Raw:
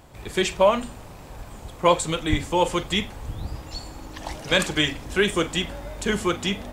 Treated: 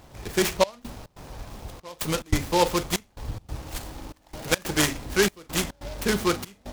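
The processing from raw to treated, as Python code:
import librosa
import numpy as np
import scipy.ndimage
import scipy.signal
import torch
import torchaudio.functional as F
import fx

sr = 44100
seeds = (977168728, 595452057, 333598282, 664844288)

y = fx.step_gate(x, sr, bpm=142, pattern='xxxxxx..xx.', floor_db=-24.0, edge_ms=4.5)
y = fx.noise_mod_delay(y, sr, seeds[0], noise_hz=3500.0, depth_ms=0.066)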